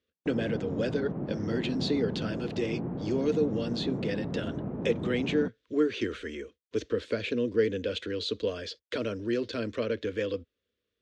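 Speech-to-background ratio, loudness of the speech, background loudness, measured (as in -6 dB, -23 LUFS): 4.0 dB, -31.5 LUFS, -35.5 LUFS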